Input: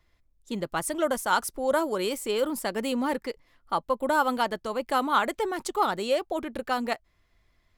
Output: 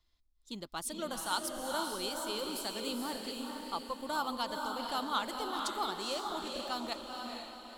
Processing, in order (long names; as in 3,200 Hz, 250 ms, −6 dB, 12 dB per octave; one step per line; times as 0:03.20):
graphic EQ with 10 bands 125 Hz −10 dB, 500 Hz −8 dB, 2,000 Hz −9 dB, 4,000 Hz +9 dB
feedback delay with all-pass diffusion 465 ms, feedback 45%, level −3 dB
level −7.5 dB